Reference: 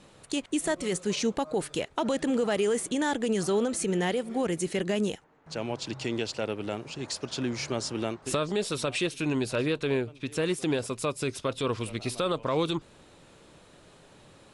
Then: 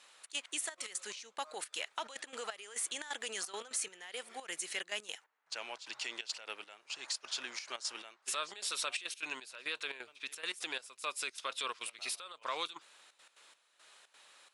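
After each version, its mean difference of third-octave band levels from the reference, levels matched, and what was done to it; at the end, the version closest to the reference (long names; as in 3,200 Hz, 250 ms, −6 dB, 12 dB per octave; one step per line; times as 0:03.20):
10.5 dB: high-pass filter 1,300 Hz 12 dB per octave
brickwall limiter −25 dBFS, peak gain reduction 6 dB
gate pattern "xxx.xxxx.x.xx..." 174 BPM −12 dB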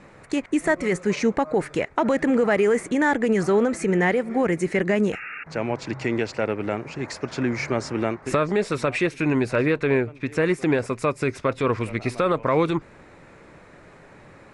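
3.5 dB: low-pass filter 7,600 Hz 12 dB per octave
high shelf with overshoot 2,600 Hz −6.5 dB, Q 3
sound drawn into the spectrogram noise, 0:05.12–0:05.44, 1,200–2,800 Hz −42 dBFS
level +6.5 dB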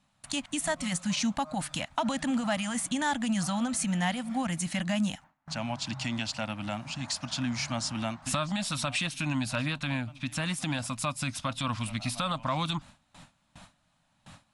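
5.5 dB: Chebyshev band-stop filter 240–710 Hz, order 2
noise gate with hold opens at −45 dBFS
in parallel at +1.5 dB: downward compressor, threshold −43 dBFS, peak gain reduction 16 dB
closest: second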